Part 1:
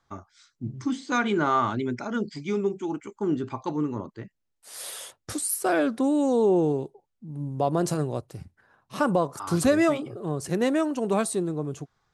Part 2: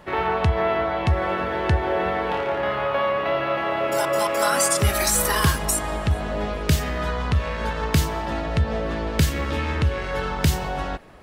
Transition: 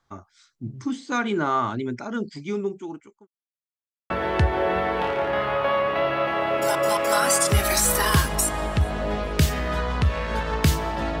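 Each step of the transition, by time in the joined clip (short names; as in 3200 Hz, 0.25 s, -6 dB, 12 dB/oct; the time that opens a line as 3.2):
part 1
2.34–3.27 fade out equal-power
3.27–4.1 mute
4.1 switch to part 2 from 1.4 s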